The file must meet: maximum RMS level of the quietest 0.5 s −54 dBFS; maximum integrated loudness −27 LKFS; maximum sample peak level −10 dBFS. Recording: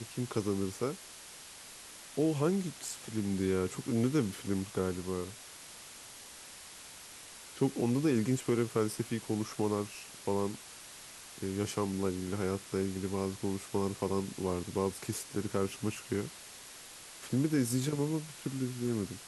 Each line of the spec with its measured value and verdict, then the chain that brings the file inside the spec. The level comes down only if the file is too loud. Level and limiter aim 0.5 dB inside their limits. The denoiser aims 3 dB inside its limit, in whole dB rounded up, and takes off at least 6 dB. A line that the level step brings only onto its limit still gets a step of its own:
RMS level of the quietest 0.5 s −50 dBFS: out of spec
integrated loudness −34.0 LKFS: in spec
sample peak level −17.0 dBFS: in spec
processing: broadband denoise 7 dB, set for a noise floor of −50 dBFS

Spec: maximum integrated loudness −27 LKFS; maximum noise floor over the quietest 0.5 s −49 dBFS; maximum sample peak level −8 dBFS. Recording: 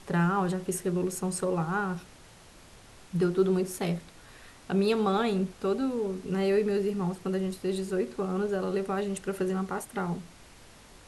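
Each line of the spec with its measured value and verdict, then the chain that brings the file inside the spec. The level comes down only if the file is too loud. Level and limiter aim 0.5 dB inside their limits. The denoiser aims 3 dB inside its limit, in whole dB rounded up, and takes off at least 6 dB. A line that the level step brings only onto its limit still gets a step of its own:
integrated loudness −29.5 LKFS: in spec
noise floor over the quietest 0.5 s −53 dBFS: in spec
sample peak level −13.5 dBFS: in spec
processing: no processing needed

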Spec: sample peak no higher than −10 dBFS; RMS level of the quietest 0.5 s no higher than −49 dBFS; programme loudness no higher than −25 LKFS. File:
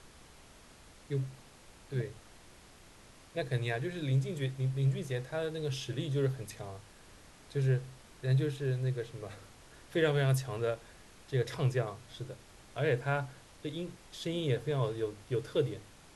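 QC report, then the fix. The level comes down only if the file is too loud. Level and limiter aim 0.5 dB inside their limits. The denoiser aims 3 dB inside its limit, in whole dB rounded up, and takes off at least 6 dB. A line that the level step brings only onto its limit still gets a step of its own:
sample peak −17.0 dBFS: in spec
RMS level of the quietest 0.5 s −56 dBFS: in spec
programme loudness −34.5 LKFS: in spec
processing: no processing needed

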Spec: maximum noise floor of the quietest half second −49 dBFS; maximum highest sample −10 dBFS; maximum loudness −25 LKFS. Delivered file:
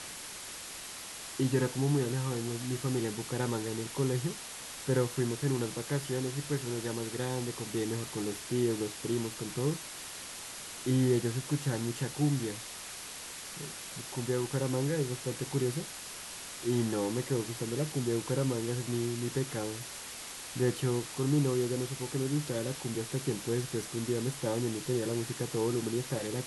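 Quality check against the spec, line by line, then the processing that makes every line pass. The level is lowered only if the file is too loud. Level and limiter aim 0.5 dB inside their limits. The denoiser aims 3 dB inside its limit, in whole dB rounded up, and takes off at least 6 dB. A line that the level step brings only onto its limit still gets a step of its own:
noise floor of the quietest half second −44 dBFS: out of spec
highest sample −16.5 dBFS: in spec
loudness −33.5 LKFS: in spec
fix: broadband denoise 8 dB, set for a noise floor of −44 dBFS

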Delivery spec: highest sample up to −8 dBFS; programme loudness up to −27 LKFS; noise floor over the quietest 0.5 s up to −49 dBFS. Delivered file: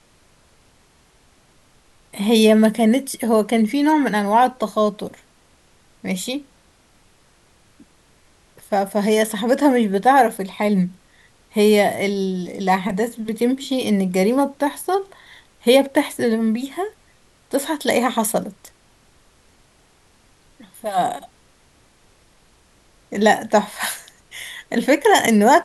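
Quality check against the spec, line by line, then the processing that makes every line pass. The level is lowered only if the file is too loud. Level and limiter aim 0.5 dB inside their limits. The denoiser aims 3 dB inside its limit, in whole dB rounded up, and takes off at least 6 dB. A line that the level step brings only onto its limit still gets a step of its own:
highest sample −2.5 dBFS: out of spec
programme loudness −19.0 LKFS: out of spec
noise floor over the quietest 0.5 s −56 dBFS: in spec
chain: level −8.5 dB

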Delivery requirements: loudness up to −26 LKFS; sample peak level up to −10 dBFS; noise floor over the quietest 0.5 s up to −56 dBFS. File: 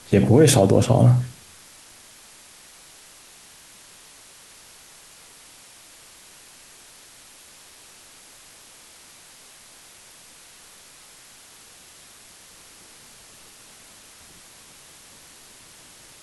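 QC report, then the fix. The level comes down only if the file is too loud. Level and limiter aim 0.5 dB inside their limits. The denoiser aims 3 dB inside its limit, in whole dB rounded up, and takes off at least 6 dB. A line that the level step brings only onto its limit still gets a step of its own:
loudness −17.0 LKFS: out of spec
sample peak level −5.0 dBFS: out of spec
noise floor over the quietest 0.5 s −48 dBFS: out of spec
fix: level −9.5 dB

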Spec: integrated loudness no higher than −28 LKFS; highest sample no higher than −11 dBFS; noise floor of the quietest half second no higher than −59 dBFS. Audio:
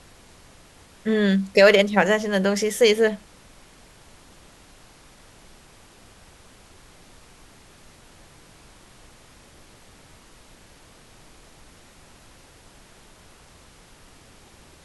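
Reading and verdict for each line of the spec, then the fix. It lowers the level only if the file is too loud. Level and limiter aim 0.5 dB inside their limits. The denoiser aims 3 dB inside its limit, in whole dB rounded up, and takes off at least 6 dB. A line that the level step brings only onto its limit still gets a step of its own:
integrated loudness −19.0 LKFS: out of spec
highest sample −4.0 dBFS: out of spec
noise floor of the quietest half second −50 dBFS: out of spec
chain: level −9.5 dB

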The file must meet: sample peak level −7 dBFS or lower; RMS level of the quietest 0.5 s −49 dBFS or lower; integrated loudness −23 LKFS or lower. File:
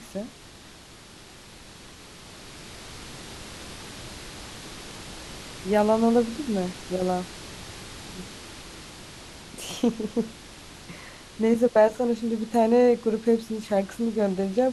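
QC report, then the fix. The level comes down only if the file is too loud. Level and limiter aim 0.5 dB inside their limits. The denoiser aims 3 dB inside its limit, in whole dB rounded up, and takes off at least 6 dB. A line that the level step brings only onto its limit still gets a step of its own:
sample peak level −8.5 dBFS: in spec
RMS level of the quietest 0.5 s −47 dBFS: out of spec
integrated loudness −24.5 LKFS: in spec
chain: broadband denoise 6 dB, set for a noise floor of −47 dBFS

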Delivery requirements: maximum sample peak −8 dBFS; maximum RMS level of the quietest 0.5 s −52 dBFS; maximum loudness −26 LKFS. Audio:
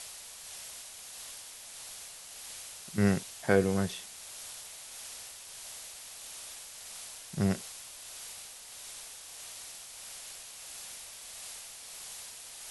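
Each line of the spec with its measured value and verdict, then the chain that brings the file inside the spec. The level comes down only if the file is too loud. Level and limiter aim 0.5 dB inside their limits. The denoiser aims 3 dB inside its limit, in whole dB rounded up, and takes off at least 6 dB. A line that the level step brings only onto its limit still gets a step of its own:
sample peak −11.0 dBFS: in spec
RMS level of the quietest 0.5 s −47 dBFS: out of spec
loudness −37.5 LKFS: in spec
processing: broadband denoise 8 dB, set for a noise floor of −47 dBFS

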